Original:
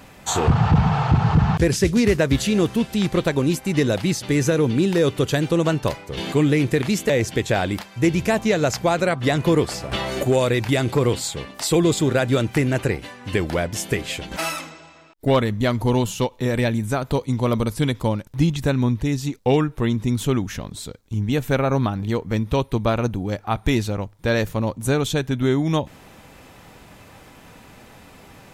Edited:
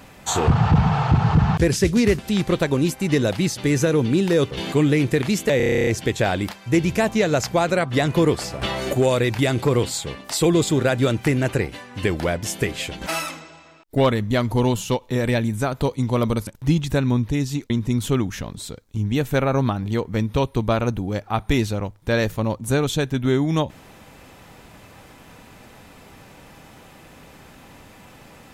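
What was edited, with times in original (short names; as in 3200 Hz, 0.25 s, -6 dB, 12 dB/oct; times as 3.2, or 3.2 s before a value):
2.19–2.84 cut
5.16–6.11 cut
7.17 stutter 0.03 s, 11 plays
17.77–18.19 cut
19.42–19.87 cut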